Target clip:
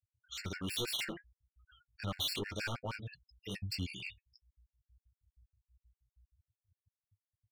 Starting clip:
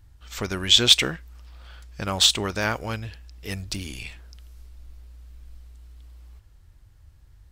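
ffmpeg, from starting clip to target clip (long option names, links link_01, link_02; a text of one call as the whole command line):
ffmpeg -i in.wav -af "agate=range=-7dB:threshold=-49dB:ratio=16:detection=peak,highpass=frequency=81:width=0.5412,highpass=frequency=81:width=1.3066,afftfilt=real='re*gte(hypot(re,im),0.0112)':imag='im*gte(hypot(re,im),0.0112)':win_size=1024:overlap=0.75,equalizer=frequency=3800:width=1.2:gain=8.5,asoftclip=type=tanh:threshold=-15.5dB,flanger=delay=18.5:depth=7.6:speed=2.4,asoftclip=type=hard:threshold=-28dB,flanger=delay=6.6:depth=4.5:regen=44:speed=0.65:shape=triangular,afftfilt=real='re*gt(sin(2*PI*6.3*pts/sr)*(1-2*mod(floor(b*sr/1024/1400),2)),0)':imag='im*gt(sin(2*PI*6.3*pts/sr)*(1-2*mod(floor(b*sr/1024/1400),2)),0)':win_size=1024:overlap=0.75" out.wav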